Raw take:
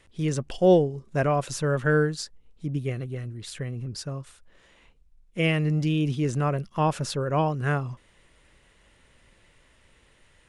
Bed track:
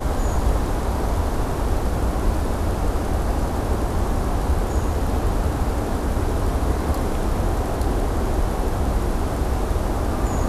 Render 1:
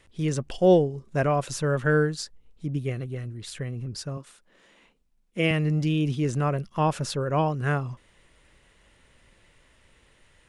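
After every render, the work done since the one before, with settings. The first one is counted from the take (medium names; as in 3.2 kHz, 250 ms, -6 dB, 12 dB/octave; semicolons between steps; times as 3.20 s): 4.17–5.51 s: resonant low shelf 140 Hz -12 dB, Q 1.5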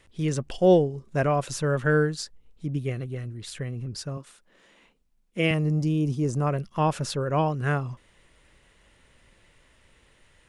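5.54–6.47 s: high-order bell 2.4 kHz -10.5 dB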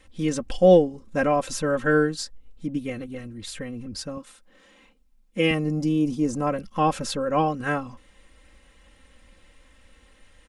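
bass shelf 190 Hz +3.5 dB; comb 3.8 ms, depth 84%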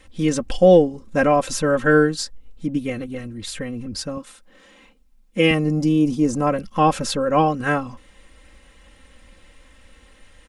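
trim +5 dB; peak limiter -3 dBFS, peak gain reduction 3 dB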